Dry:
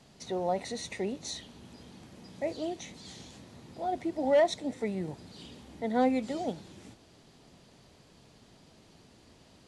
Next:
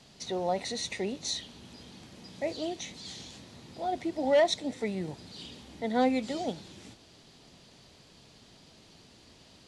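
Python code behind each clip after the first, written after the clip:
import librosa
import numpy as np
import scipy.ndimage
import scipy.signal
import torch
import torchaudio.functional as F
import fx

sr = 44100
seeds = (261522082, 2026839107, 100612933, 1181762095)

y = fx.peak_eq(x, sr, hz=4100.0, db=6.5, octaves=1.8)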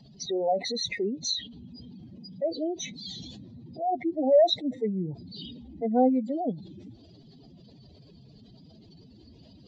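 y = fx.spec_expand(x, sr, power=2.6)
y = F.gain(torch.from_numpy(y), 4.5).numpy()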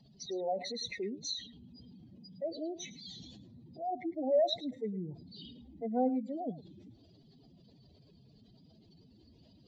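y = x + 10.0 ** (-16.0 / 20.0) * np.pad(x, (int(107 * sr / 1000.0), 0))[:len(x)]
y = F.gain(torch.from_numpy(y), -8.5).numpy()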